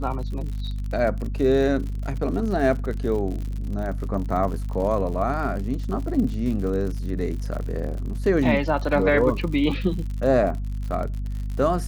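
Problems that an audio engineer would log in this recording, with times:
surface crackle 79 per second −31 dBFS
mains hum 50 Hz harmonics 5 −28 dBFS

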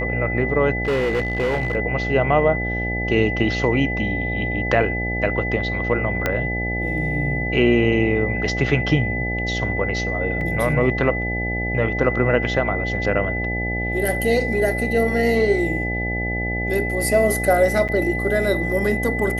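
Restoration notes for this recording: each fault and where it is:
mains buzz 60 Hz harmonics 14 −26 dBFS
whistle 2,000 Hz −25 dBFS
0:00.83–0:01.76: clipping −17 dBFS
0:06.26: click −6 dBFS
0:10.41: drop-out 2.3 ms
0:17.88–0:17.89: drop-out 7.7 ms

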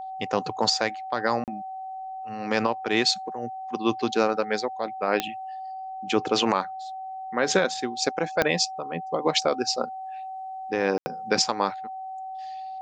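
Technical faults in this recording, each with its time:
whistle 760 Hz −33 dBFS
0:01.44–0:01.48: drop-out 38 ms
0:05.20: click −8 dBFS
0:08.42: click −7 dBFS
0:10.98–0:11.06: drop-out 80 ms

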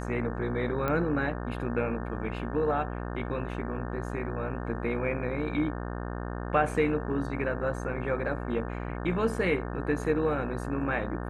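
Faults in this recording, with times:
mains buzz 60 Hz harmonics 30 −35 dBFS
0:00.88: click −17 dBFS

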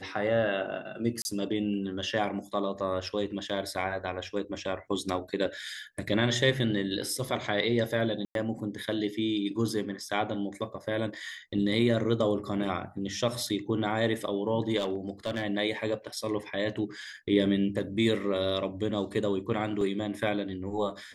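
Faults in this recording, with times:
0:01.22–0:01.25: drop-out 30 ms
0:08.25–0:08.35: drop-out 102 ms
0:11.74: drop-out 2.2 ms
0:14.78–0:15.44: clipping −25 dBFS
0:19.81: drop-out 2.5 ms

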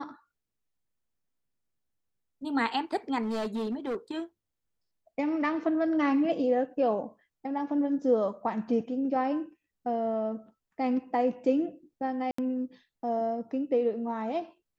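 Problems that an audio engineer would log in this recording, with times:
0:03.22–0:04.17: clipping −28 dBFS
0:12.31–0:12.38: drop-out 74 ms

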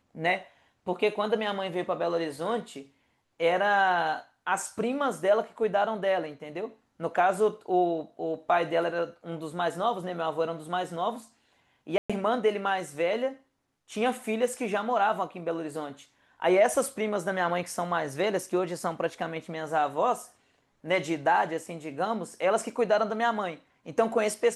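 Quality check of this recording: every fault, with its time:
0:11.98–0:12.10: drop-out 116 ms

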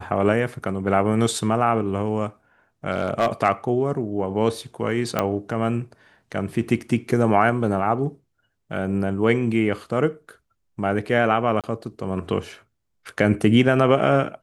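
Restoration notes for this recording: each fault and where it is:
0:02.92–0:03.28: clipping −13.5 dBFS
0:05.19: click −7 dBFS
0:11.61–0:11.64: drop-out 27 ms

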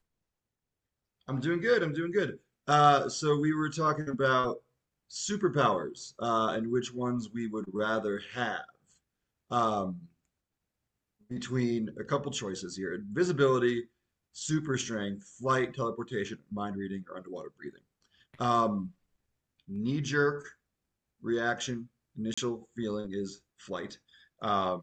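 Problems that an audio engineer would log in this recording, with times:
0:22.34–0:22.38: drop-out 35 ms

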